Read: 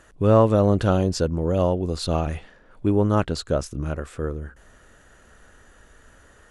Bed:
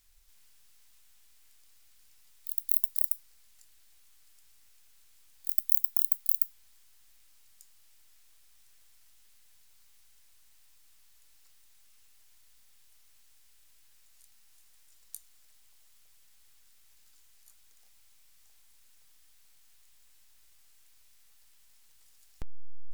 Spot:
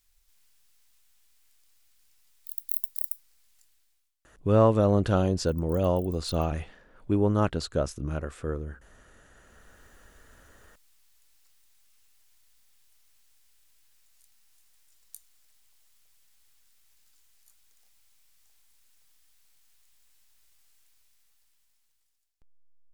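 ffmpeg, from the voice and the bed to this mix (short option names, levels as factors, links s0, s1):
-filter_complex "[0:a]adelay=4250,volume=0.631[s0];[1:a]volume=7.5,afade=t=out:st=3.6:d=0.54:silence=0.1,afade=t=in:st=9.34:d=0.51:silence=0.0891251,afade=t=out:st=20.74:d=1.63:silence=0.0630957[s1];[s0][s1]amix=inputs=2:normalize=0"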